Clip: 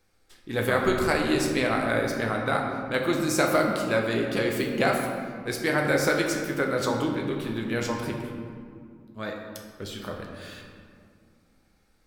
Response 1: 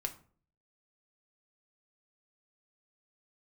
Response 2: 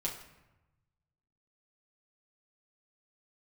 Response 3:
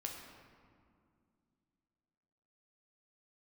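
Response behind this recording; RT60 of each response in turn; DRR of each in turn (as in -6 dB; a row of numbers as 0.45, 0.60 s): 3; 0.45, 1.0, 2.2 s; 4.0, -4.0, 0.5 dB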